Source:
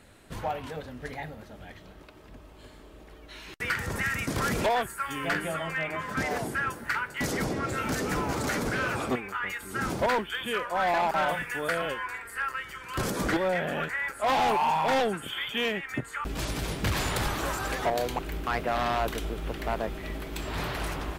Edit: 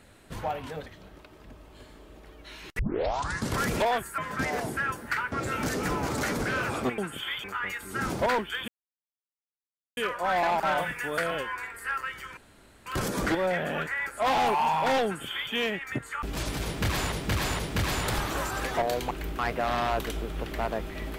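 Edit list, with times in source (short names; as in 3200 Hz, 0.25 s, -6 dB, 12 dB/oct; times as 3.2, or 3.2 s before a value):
0.86–1.7 cut
3.63 tape start 0.78 s
5.02–5.96 cut
7.1–7.58 cut
10.48 insert silence 1.29 s
12.88 insert room tone 0.49 s
15.08–15.54 copy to 9.24
16.67–17.14 loop, 3 plays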